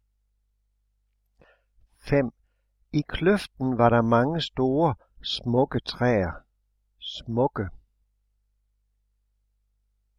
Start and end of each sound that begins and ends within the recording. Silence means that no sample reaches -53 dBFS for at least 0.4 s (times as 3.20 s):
1.40–2.30 s
2.92–6.42 s
7.01–7.79 s